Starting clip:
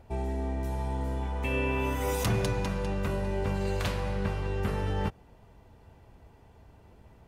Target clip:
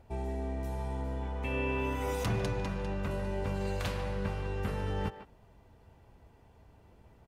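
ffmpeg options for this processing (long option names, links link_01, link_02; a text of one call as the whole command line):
ffmpeg -i in.wav -filter_complex "[0:a]asettb=1/sr,asplit=3[link_01][link_02][link_03];[link_01]atrim=end=1.014[link_04];[link_02]atrim=start=1.01:end=3.11,asetpts=PTS-STARTPTS,afade=type=in:duration=0.004:curve=qsin,afade=type=out:start_time=2.096:duration=0.004:curve=qsin,highshelf=frequency=7000:gain=-8[link_05];[link_03]atrim=start=3.106[link_06];[link_04][link_05]acrossfade=duration=0.004:curve1=hsin:curve2=qsin[link_07];[link_07][link_06]acrossfade=duration=0.004:curve1=qsin:curve2=hsin,asplit=2[link_08][link_09];[link_09]adelay=150,highpass=300,lowpass=3400,asoftclip=type=hard:threshold=-26.5dB,volume=-10dB[link_10];[link_08][link_10]amix=inputs=2:normalize=0,volume=-4dB" out.wav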